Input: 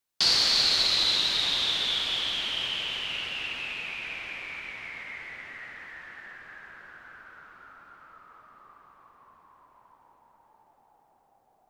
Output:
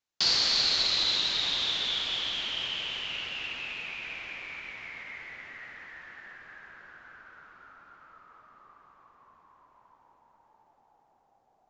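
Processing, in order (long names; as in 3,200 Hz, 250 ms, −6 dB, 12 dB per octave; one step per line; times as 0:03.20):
downsampling to 16,000 Hz
level −2.5 dB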